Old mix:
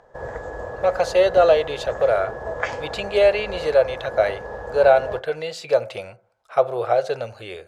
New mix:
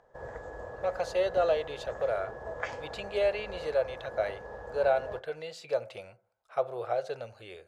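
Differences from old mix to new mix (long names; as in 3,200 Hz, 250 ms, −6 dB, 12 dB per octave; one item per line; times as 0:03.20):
speech −11.5 dB
background −10.0 dB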